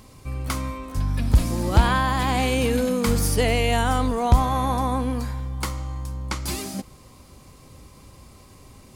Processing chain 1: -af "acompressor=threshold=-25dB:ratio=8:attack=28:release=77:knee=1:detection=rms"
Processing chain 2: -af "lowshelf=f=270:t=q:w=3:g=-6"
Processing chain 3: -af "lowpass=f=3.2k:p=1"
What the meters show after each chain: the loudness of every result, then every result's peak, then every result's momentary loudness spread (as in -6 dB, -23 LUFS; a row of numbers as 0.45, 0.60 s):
-28.5, -24.5, -24.0 LUFS; -13.0, -8.5, -6.0 dBFS; 14, 14, 12 LU